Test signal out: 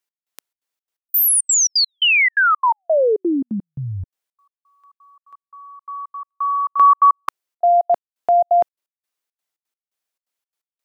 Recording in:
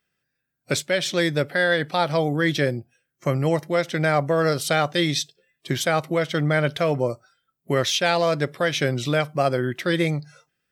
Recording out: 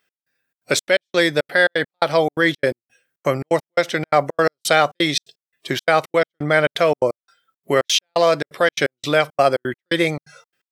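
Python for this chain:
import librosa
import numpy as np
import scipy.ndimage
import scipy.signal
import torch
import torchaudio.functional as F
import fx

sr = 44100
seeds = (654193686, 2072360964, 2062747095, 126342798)

y = fx.step_gate(x, sr, bpm=171, pattern='x..xxx.xx.', floor_db=-60.0, edge_ms=4.5)
y = fx.bass_treble(y, sr, bass_db=-12, treble_db=-1)
y = y * 10.0 ** (6.5 / 20.0)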